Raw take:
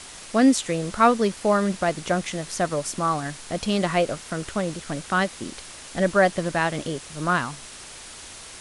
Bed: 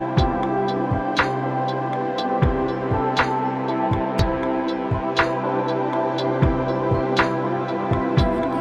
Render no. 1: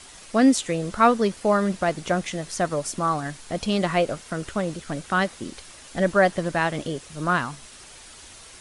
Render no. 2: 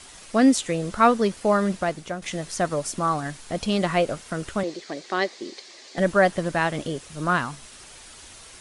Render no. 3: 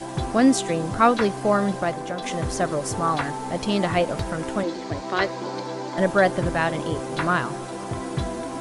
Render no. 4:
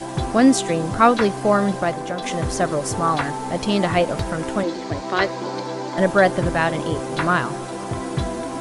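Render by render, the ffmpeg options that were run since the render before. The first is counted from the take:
ffmpeg -i in.wav -af "afftdn=noise_reduction=6:noise_floor=-42" out.wav
ffmpeg -i in.wav -filter_complex "[0:a]asettb=1/sr,asplit=3[link_01][link_02][link_03];[link_01]atrim=end=4.634[link_04];[link_02]atrim=start=4.63:end=5.98,asetpts=PTS-STARTPTS,afade=type=in:duration=0.004:curve=qsin,afade=type=out:start_time=1.346:duration=0.004:curve=qsin,highpass=370,equalizer=frequency=370:width_type=q:width=4:gain=9,equalizer=frequency=940:width_type=q:width=4:gain=-3,equalizer=frequency=1400:width_type=q:width=4:gain=-9,equalizer=frequency=2000:width_type=q:width=4:gain=4,equalizer=frequency=2800:width_type=q:width=4:gain=-4,equalizer=frequency=4400:width_type=q:width=4:gain=7,lowpass=frequency=6900:width=0.5412,lowpass=frequency=6900:width=1.3066[link_05];[link_03]atrim=start=5.976[link_06];[link_04][link_05]acrossfade=duration=0.004:curve1=hsin:curve2=qsin[link_07];[link_07][link_06]acrossfade=duration=0.004:curve1=qsin:curve2=hsin,asplit=2[link_08][link_09];[link_08]atrim=end=2.22,asetpts=PTS-STARTPTS,afade=type=out:start_time=1.73:duration=0.49:silence=0.266073[link_10];[link_09]atrim=start=2.22,asetpts=PTS-STARTPTS,afade=type=in:duration=0.004:curve=hsin:silence=0.266073[link_11];[link_10][link_11]concat=n=2:v=0:a=1" out.wav
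ffmpeg -i in.wav -i bed.wav -filter_complex "[1:a]volume=-9dB[link_01];[0:a][link_01]amix=inputs=2:normalize=0" out.wav
ffmpeg -i in.wav -af "volume=3dB" out.wav

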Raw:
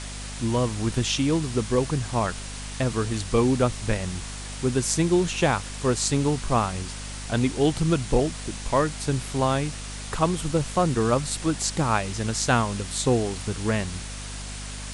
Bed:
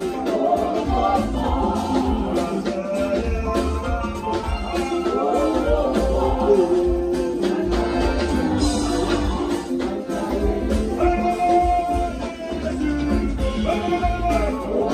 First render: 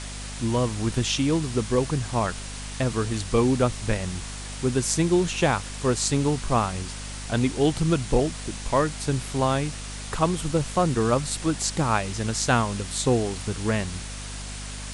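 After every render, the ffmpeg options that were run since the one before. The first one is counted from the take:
ffmpeg -i in.wav -af anull out.wav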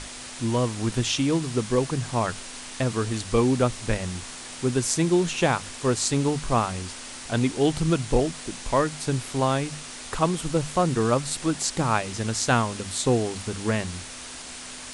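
ffmpeg -i in.wav -af "bandreject=frequency=50:width_type=h:width=6,bandreject=frequency=100:width_type=h:width=6,bandreject=frequency=150:width_type=h:width=6,bandreject=frequency=200:width_type=h:width=6" out.wav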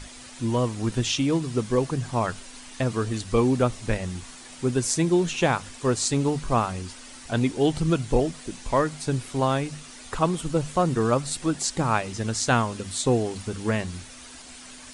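ffmpeg -i in.wav -af "afftdn=noise_reduction=8:noise_floor=-39" out.wav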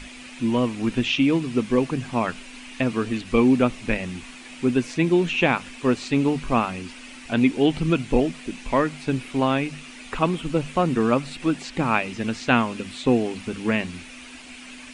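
ffmpeg -i in.wav -filter_complex "[0:a]acrossover=split=3800[link_01][link_02];[link_02]acompressor=threshold=-48dB:ratio=4:attack=1:release=60[link_03];[link_01][link_03]amix=inputs=2:normalize=0,equalizer=frequency=100:width_type=o:width=0.67:gain=-8,equalizer=frequency=250:width_type=o:width=0.67:gain=7,equalizer=frequency=2500:width_type=o:width=0.67:gain=11" out.wav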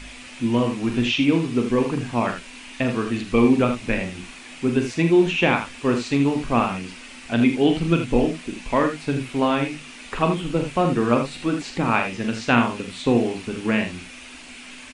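ffmpeg -i in.wav -filter_complex "[0:a]asplit=2[link_01][link_02];[link_02]adelay=17,volume=-14dB[link_03];[link_01][link_03]amix=inputs=2:normalize=0,aecho=1:1:42|79:0.422|0.376" out.wav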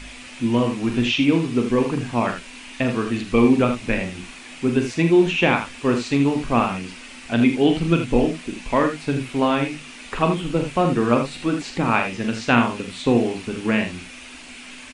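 ffmpeg -i in.wav -af "volume=1dB" out.wav

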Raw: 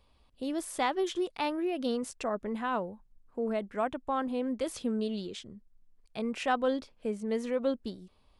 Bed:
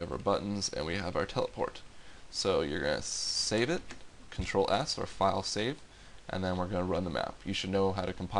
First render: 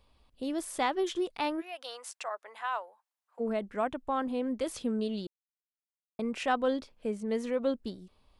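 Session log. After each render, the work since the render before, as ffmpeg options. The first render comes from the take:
ffmpeg -i in.wav -filter_complex "[0:a]asplit=3[link_01][link_02][link_03];[link_01]afade=type=out:start_time=1.6:duration=0.02[link_04];[link_02]highpass=frequency=710:width=0.5412,highpass=frequency=710:width=1.3066,afade=type=in:start_time=1.6:duration=0.02,afade=type=out:start_time=3.39:duration=0.02[link_05];[link_03]afade=type=in:start_time=3.39:duration=0.02[link_06];[link_04][link_05][link_06]amix=inputs=3:normalize=0,asplit=3[link_07][link_08][link_09];[link_07]atrim=end=5.27,asetpts=PTS-STARTPTS,afade=type=out:start_time=5.266:duration=0.004:curve=hsin[link_10];[link_08]atrim=start=5.27:end=6.19,asetpts=PTS-STARTPTS,volume=0[link_11];[link_09]atrim=start=6.19,asetpts=PTS-STARTPTS,afade=type=in:duration=0.004:curve=hsin[link_12];[link_10][link_11][link_12]concat=n=3:v=0:a=1" out.wav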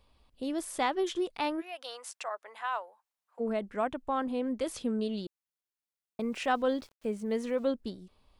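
ffmpeg -i in.wav -filter_complex "[0:a]asettb=1/sr,asplit=3[link_01][link_02][link_03];[link_01]atrim=end=6.204[link_04];[link_02]atrim=start=6.2:end=7.66,asetpts=PTS-STARTPTS,afade=type=in:duration=0.004:curve=qsin,afade=type=out:start_time=1.456:duration=0.004:curve=qsin,aeval=exprs='val(0)*gte(abs(val(0)),0.00188)':channel_layout=same[link_05];[link_03]atrim=start=7.656[link_06];[link_04][link_05]acrossfade=duration=0.004:curve1=hsin:curve2=qsin[link_07];[link_07][link_06]acrossfade=duration=0.004:curve1=qsin:curve2=hsin" out.wav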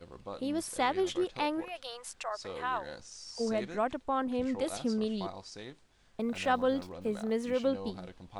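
ffmpeg -i in.wav -i bed.wav -filter_complex "[1:a]volume=-13dB[link_01];[0:a][link_01]amix=inputs=2:normalize=0" out.wav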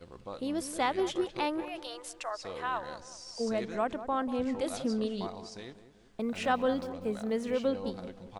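ffmpeg -i in.wav -filter_complex "[0:a]asplit=2[link_01][link_02];[link_02]adelay=191,lowpass=frequency=1200:poles=1,volume=-11.5dB,asplit=2[link_03][link_04];[link_04]adelay=191,lowpass=frequency=1200:poles=1,volume=0.47,asplit=2[link_05][link_06];[link_06]adelay=191,lowpass=frequency=1200:poles=1,volume=0.47,asplit=2[link_07][link_08];[link_08]adelay=191,lowpass=frequency=1200:poles=1,volume=0.47,asplit=2[link_09][link_10];[link_10]adelay=191,lowpass=frequency=1200:poles=1,volume=0.47[link_11];[link_01][link_03][link_05][link_07][link_09][link_11]amix=inputs=6:normalize=0" out.wav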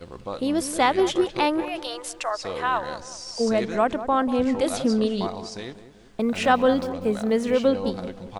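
ffmpeg -i in.wav -af "volume=9.5dB" out.wav

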